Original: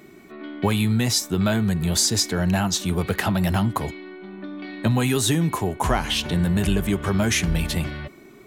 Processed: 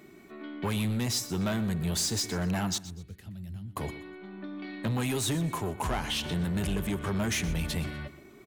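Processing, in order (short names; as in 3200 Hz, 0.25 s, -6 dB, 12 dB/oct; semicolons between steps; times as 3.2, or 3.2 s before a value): 2.78–3.77 passive tone stack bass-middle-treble 10-0-1; soft clip -19 dBFS, distortion -13 dB; feedback echo 0.123 s, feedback 30%, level -16 dB; gain -5.5 dB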